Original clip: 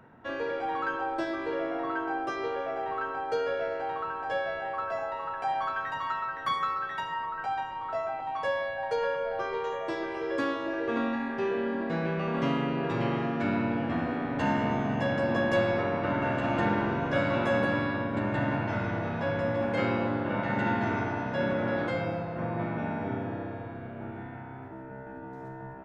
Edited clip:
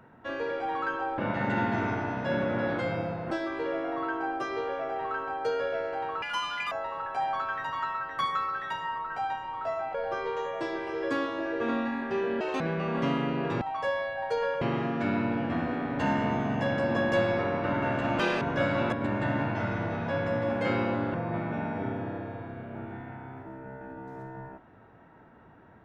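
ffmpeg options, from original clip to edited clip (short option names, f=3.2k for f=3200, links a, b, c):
-filter_complex "[0:a]asplit=14[a][b][c][d][e][f][g][h][i][j][k][l][m][n];[a]atrim=end=1.182[o];[b]atrim=start=20.268:end=22.402[p];[c]atrim=start=1.178:end=4.094[q];[d]atrim=start=4.09:end=4.99,asetpts=PTS-STARTPTS,asetrate=80262,aresample=44100[r];[e]atrim=start=4.986:end=8.222[s];[f]atrim=start=9.218:end=11.684[t];[g]atrim=start=11.68:end=12,asetpts=PTS-STARTPTS,asetrate=71001,aresample=44100,atrim=end_sample=8765,asetpts=PTS-STARTPTS[u];[h]atrim=start=11.996:end=13.012[v];[i]atrim=start=8.218:end=9.222[w];[j]atrim=start=13.008:end=16.594[x];[k]atrim=start=16.59:end=16.97,asetpts=PTS-STARTPTS,asetrate=75852,aresample=44100,atrim=end_sample=9743,asetpts=PTS-STARTPTS[y];[l]atrim=start=16.966:end=17.482[z];[m]atrim=start=18.048:end=20.272[aa];[n]atrim=start=22.398[ab];[o][p]acrossfade=d=0.004:c1=hsin:c2=hsin[ac];[ac][q]acrossfade=d=0.004:c1=hsin:c2=hsin[ad];[ad][r]acrossfade=d=0.004:c1=hsin:c2=hsin[ae];[ae][s]acrossfade=d=0.004:c1=hsin:c2=hsin[af];[af][t]acrossfade=d=0.004:c1=hsin:c2=hsin[ag];[ag][u]acrossfade=d=0.004:c1=hsin:c2=hsin[ah];[ah][v]acrossfade=d=0.004:c1=hsin:c2=hsin[ai];[ai][w]acrossfade=d=0.004:c1=hsin:c2=hsin[aj];[aj][x]acrossfade=d=0.004:c1=hsin:c2=hsin[ak];[ak][y]acrossfade=d=0.004:c1=hsin:c2=hsin[al];[al][z]acrossfade=d=0.004:c1=hsin:c2=hsin[am];[am][aa]acrossfade=d=0.004:c1=hsin:c2=hsin[an];[an][ab]acrossfade=d=0.004:c1=hsin:c2=hsin"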